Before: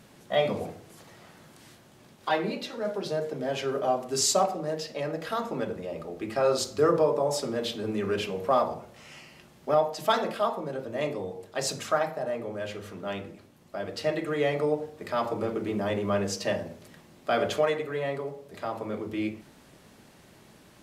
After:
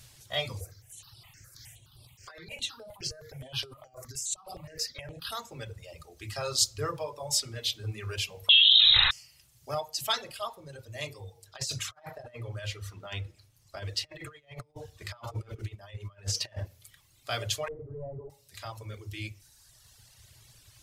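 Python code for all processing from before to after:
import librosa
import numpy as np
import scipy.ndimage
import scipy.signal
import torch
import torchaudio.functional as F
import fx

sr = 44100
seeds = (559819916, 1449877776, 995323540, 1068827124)

y = fx.chain(x, sr, fx.over_compress(threshold_db=-33.0, ratio=-1.0),
    fx.phaser_held(hz=9.6, low_hz=870.0, high_hz=6600.0), at=(0.61, 5.32))
y = fx.chain(y, sr, fx.low_shelf(hz=140.0, db=6.5),
    fx.freq_invert(carrier_hz=3900),
    fx.env_flatten(amount_pct=100), at=(8.49, 9.11))
y = fx.chain(y, sr, fx.over_compress(threshold_db=-33.0, ratio=-0.5),
    fx.high_shelf(hz=5300.0, db=-9.0), at=(11.46, 16.66))
y = fx.chain(y, sr, fx.leveller(passes=3),
    fx.ladder_lowpass(hz=740.0, resonance_pct=25), at=(17.68, 18.3))
y = fx.dereverb_blind(y, sr, rt60_s=1.6)
y = fx.curve_eq(y, sr, hz=(120.0, 190.0, 1500.0, 5000.0), db=(0, -26, -13, 0))
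y = y * 10.0 ** (8.0 / 20.0)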